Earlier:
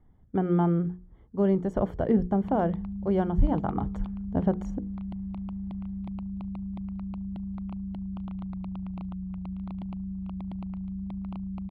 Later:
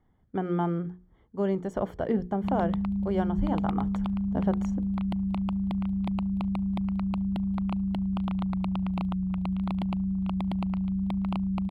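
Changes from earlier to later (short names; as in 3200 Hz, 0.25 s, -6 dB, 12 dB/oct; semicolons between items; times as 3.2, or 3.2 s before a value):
background +11.5 dB; master: add tilt +2 dB/oct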